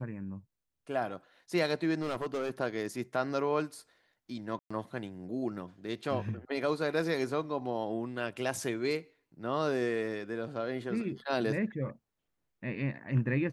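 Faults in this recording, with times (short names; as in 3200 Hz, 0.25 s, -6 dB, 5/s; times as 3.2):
2.01–2.51 clipped -29 dBFS
4.59–4.71 gap 0.115 s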